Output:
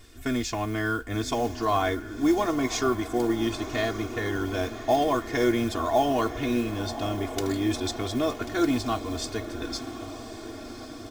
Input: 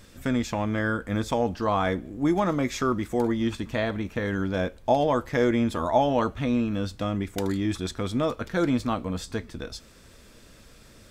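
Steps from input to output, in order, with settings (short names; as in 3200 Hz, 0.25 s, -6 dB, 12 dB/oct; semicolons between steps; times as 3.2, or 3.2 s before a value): dynamic EQ 5400 Hz, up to +7 dB, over -52 dBFS, Q 1.1; diffused feedback echo 1.096 s, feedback 64%, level -12 dB; modulation noise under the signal 26 dB; comb 2.8 ms, depth 95%; gain -3.5 dB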